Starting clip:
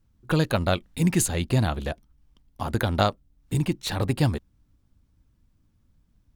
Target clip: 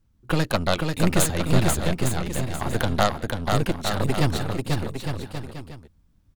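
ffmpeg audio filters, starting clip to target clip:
-af "aeval=exprs='0.473*(cos(1*acos(clip(val(0)/0.473,-1,1)))-cos(1*PI/2))+0.0944*(cos(6*acos(clip(val(0)/0.473,-1,1)))-cos(6*PI/2))':c=same,aecho=1:1:490|857.5|1133|1340|1495:0.631|0.398|0.251|0.158|0.1"

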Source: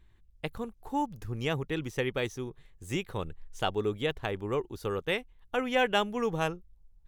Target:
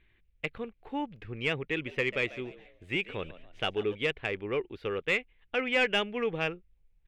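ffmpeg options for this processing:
-filter_complex "[0:a]firequalizer=gain_entry='entry(460,0);entry(920,-10);entry(2300,8);entry(6100,-20)':delay=0.05:min_phase=1,asplit=2[a][b];[b]highpass=f=720:p=1,volume=12dB,asoftclip=type=tanh:threshold=-12dB[c];[a][c]amix=inputs=2:normalize=0,lowpass=f=2.6k:p=1,volume=-6dB,asplit=3[d][e][f];[d]afade=t=out:st=1.86:d=0.02[g];[e]asplit=4[h][i][j][k];[i]adelay=142,afreqshift=85,volume=-16.5dB[l];[j]adelay=284,afreqshift=170,volume=-25.1dB[m];[k]adelay=426,afreqshift=255,volume=-33.8dB[n];[h][l][m][n]amix=inputs=4:normalize=0,afade=t=in:st=1.86:d=0.02,afade=t=out:st=3.94:d=0.02[o];[f]afade=t=in:st=3.94:d=0.02[p];[g][o][p]amix=inputs=3:normalize=0,volume=-2dB"

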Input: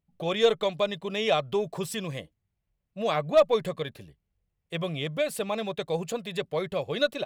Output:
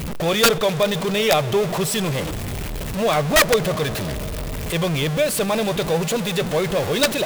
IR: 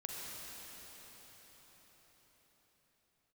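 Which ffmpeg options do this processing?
-filter_complex "[0:a]aeval=exprs='val(0)+0.5*0.0531*sgn(val(0))':c=same,asplit=2[a][b];[1:a]atrim=start_sample=2205[c];[b][c]afir=irnorm=-1:irlink=0,volume=-12.5dB[d];[a][d]amix=inputs=2:normalize=0,aeval=exprs='(mod(3.98*val(0)+1,2)-1)/3.98':c=same,volume=3.5dB"

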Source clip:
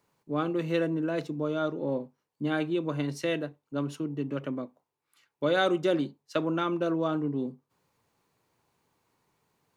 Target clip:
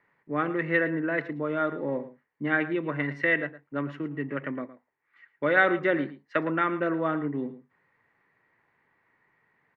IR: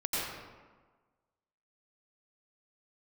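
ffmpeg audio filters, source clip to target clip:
-filter_complex "[0:a]lowpass=f=1.9k:t=q:w=8.5,equalizer=f=60:w=0.69:g=-5,asplit=2[a][b];[b]aecho=0:1:112:0.178[c];[a][c]amix=inputs=2:normalize=0"

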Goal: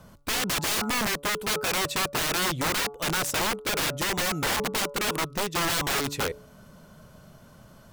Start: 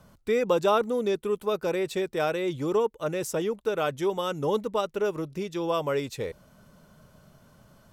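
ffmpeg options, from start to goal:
-af "bandreject=f=143.1:t=h:w=4,bandreject=f=286.2:t=h:w=4,bandreject=f=429.3:t=h:w=4,bandreject=f=572.4:t=h:w=4,bandreject=f=715.5:t=h:w=4,bandreject=f=858.6:t=h:w=4,bandreject=f=1.0017k:t=h:w=4,bandreject=f=1.1448k:t=h:w=4,bandreject=f=1.2879k:t=h:w=4,bandreject=f=1.431k:t=h:w=4,aeval=exprs='(mod(21.1*val(0)+1,2)-1)/21.1':c=same,volume=5dB"

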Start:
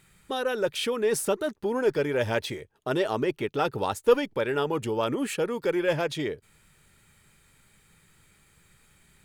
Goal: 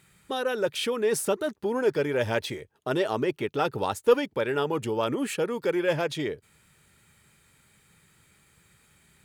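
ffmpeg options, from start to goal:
-af "highpass=59"

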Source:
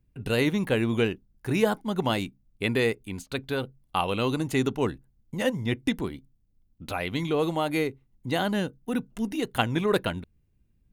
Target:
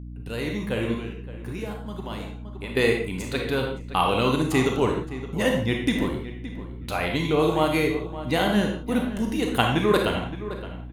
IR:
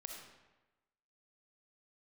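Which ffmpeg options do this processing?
-filter_complex "[0:a]asplit=2[a][b];[b]adelay=568,lowpass=f=2.6k:p=1,volume=-13dB,asplit=2[c][d];[d]adelay=568,lowpass=f=2.6k:p=1,volume=0.19[e];[a][c][e]amix=inputs=3:normalize=0,asettb=1/sr,asplit=3[f][g][h];[f]atrim=end=0.944[i];[g]atrim=start=0.94:end=2.77,asetpts=PTS-STARTPTS,afade=t=in:d=0.004:c=qsin,afade=t=out:st=1.826:d=0.004:c=qsin,acompressor=threshold=-47dB:ratio=2[j];[h]atrim=start=2.766[k];[i][j]acrossfade=d=0.004:c1=hsin:c2=qsin[l];[l][k]acrossfade=d=0.004:c1=qsin:c2=hsin[m];[1:a]atrim=start_sample=2205,afade=t=out:st=0.37:d=0.01,atrim=end_sample=16758,asetrate=74970,aresample=44100[n];[m][n]afir=irnorm=-1:irlink=0,dynaudnorm=f=370:g=5:m=11dB,aeval=exprs='val(0)+0.0126*(sin(2*PI*60*n/s)+sin(2*PI*2*60*n/s)/2+sin(2*PI*3*60*n/s)/3+sin(2*PI*4*60*n/s)/4+sin(2*PI*5*60*n/s)/5)':c=same,volume=2dB"

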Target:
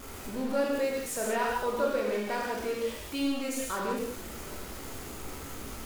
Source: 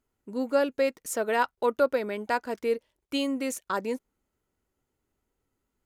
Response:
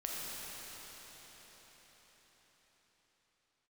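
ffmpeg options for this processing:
-filter_complex "[0:a]aeval=exprs='val(0)+0.5*0.0316*sgn(val(0))':c=same[a];[1:a]atrim=start_sample=2205,afade=t=out:st=0.45:d=0.01,atrim=end_sample=20286,asetrate=83790,aresample=44100[b];[a][b]afir=irnorm=-1:irlink=0"

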